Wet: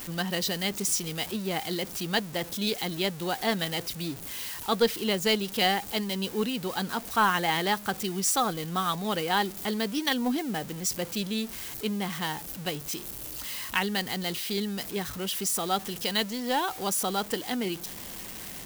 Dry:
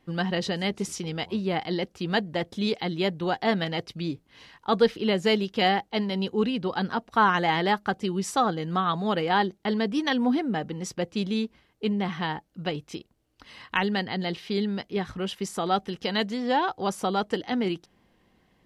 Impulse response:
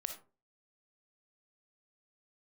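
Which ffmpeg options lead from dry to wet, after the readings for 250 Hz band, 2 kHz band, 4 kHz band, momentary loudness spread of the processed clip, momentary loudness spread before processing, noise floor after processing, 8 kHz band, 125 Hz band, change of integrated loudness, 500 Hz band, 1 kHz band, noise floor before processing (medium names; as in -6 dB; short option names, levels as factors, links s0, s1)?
-4.0 dB, -1.0 dB, +2.0 dB, 8 LU, 9 LU, -41 dBFS, +11.0 dB, -4.0 dB, -1.5 dB, -4.0 dB, -3.0 dB, -66 dBFS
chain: -af "aeval=exprs='val(0)+0.5*0.0188*sgn(val(0))':c=same,aemphasis=mode=production:type=75kf,aeval=exprs='0.501*(cos(1*acos(clip(val(0)/0.501,-1,1)))-cos(1*PI/2))+0.0224*(cos(4*acos(clip(val(0)/0.501,-1,1)))-cos(4*PI/2))+0.00891*(cos(6*acos(clip(val(0)/0.501,-1,1)))-cos(6*PI/2))+0.0158*(cos(7*acos(clip(val(0)/0.501,-1,1)))-cos(7*PI/2))':c=same,volume=0.631"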